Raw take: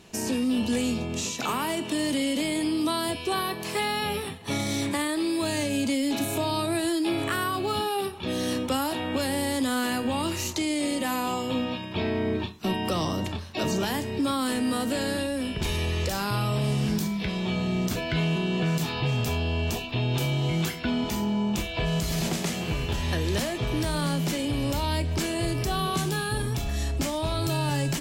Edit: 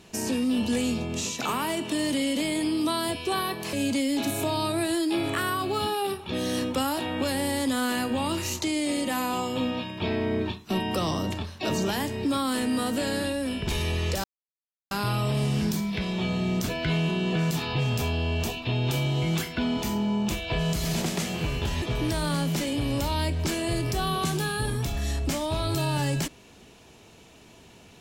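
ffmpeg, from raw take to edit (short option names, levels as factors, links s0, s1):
-filter_complex "[0:a]asplit=4[s0][s1][s2][s3];[s0]atrim=end=3.732[s4];[s1]atrim=start=5.668:end=16.18,asetpts=PTS-STARTPTS,afade=t=out:st=10.508:d=0.004:c=hsin,apad=pad_dur=0.67[s5];[s2]atrim=start=16.18:end=23.092,asetpts=PTS-STARTPTS,afade=t=in:d=0.004:c=hsin[s6];[s3]atrim=start=23.538[s7];[s5][s6]concat=n=2:v=0:a=1[s8];[s4][s8]acrossfade=d=0.004:c1=hsin:c2=hsin[s9];[s9][s7]acrossfade=d=0.004:c1=hsin:c2=hsin"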